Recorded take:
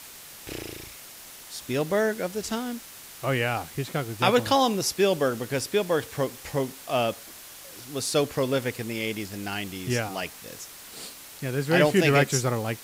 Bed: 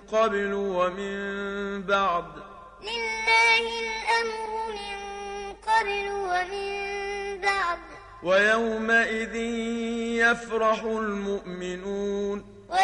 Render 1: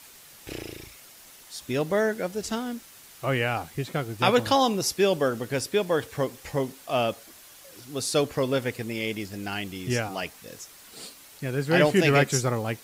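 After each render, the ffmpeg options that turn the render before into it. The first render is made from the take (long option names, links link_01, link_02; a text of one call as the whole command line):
ffmpeg -i in.wav -af "afftdn=noise_reduction=6:noise_floor=-45" out.wav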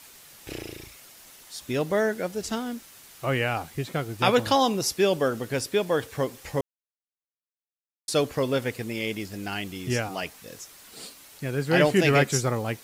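ffmpeg -i in.wav -filter_complex "[0:a]asplit=3[link_01][link_02][link_03];[link_01]atrim=end=6.61,asetpts=PTS-STARTPTS,afade=type=out:start_time=6.606:duration=0.004:curve=hsin[link_04];[link_02]atrim=start=6.61:end=8.08,asetpts=PTS-STARTPTS,volume=0[link_05];[link_03]atrim=start=8.08,asetpts=PTS-STARTPTS,afade=type=in:duration=0.004:curve=hsin[link_06];[link_04][link_05][link_06]concat=n=3:v=0:a=1" out.wav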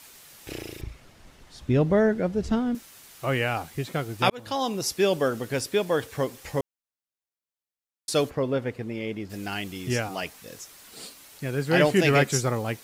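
ffmpeg -i in.wav -filter_complex "[0:a]asettb=1/sr,asplit=3[link_01][link_02][link_03];[link_01]atrim=end=0.814[link_04];[link_02]atrim=start=0.81:end=2.75,asetpts=PTS-STARTPTS,afade=type=in:duration=0.004:curve=qsin,afade=type=out:start_time=1.936:duration=0.004:curve=qsin,aemphasis=mode=reproduction:type=riaa[link_05];[link_03]atrim=start=2.746[link_06];[link_04][link_05]acrossfade=duration=0.004:curve1=hsin:curve2=qsin[link_07];[link_07][link_06]acrossfade=duration=0.004:curve1=qsin:curve2=hsin,asplit=3[link_08][link_09][link_10];[link_08]afade=type=out:start_time=8.29:duration=0.02[link_11];[link_09]lowpass=frequency=1200:poles=1,afade=type=in:start_time=8.29:duration=0.02,afade=type=out:start_time=9.29:duration=0.02[link_12];[link_10]afade=type=in:start_time=9.29:duration=0.02[link_13];[link_11][link_12][link_13]amix=inputs=3:normalize=0,asplit=2[link_14][link_15];[link_14]atrim=end=4.3,asetpts=PTS-STARTPTS,afade=type=out:start_time=4.296:duration=0.004:curve=hsin[link_16];[link_15]atrim=start=4.3,asetpts=PTS-STARTPTS,afade=type=in:duration=0.9:curve=qsin[link_17];[link_16][link_17]concat=n=2:v=0:a=1" out.wav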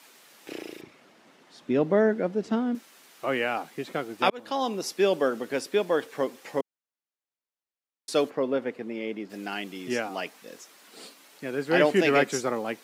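ffmpeg -i in.wav -af "highpass=frequency=210:width=0.5412,highpass=frequency=210:width=1.3066,highshelf=frequency=5000:gain=-9.5" out.wav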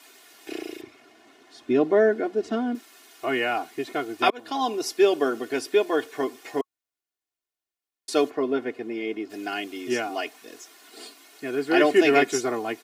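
ffmpeg -i in.wav -af "bandreject=frequency=1100:width=24,aecho=1:1:2.8:0.92" out.wav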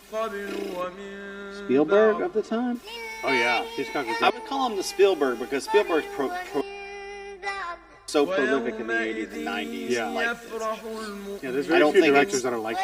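ffmpeg -i in.wav -i bed.wav -filter_complex "[1:a]volume=-6.5dB[link_01];[0:a][link_01]amix=inputs=2:normalize=0" out.wav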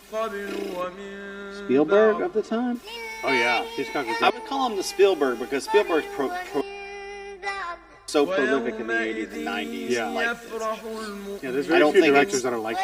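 ffmpeg -i in.wav -af "volume=1dB" out.wav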